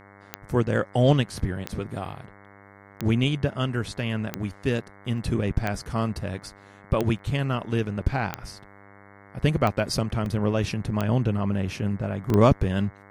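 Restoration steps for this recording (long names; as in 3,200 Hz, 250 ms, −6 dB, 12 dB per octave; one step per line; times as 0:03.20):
click removal
hum removal 99.7 Hz, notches 22
repair the gap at 0:05.18/0:06.43/0:07.19/0:08.81/0:10.26/0:12.30, 1.6 ms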